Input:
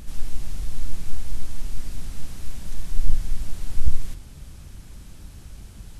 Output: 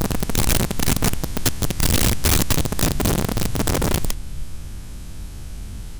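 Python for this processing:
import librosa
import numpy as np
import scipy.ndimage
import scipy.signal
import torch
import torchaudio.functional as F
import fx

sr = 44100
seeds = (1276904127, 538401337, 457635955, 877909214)

y = fx.spec_swells(x, sr, rise_s=2.15)
y = y + 10.0 ** (-24.0 / 20.0) * np.pad(y, (int(598 * sr / 1000.0), 0))[:len(y)]
y = (np.mod(10.0 ** (18.0 / 20.0) * y + 1.0, 2.0) - 1.0) / 10.0 ** (18.0 / 20.0)
y = F.gain(torch.from_numpy(y), 4.0).numpy()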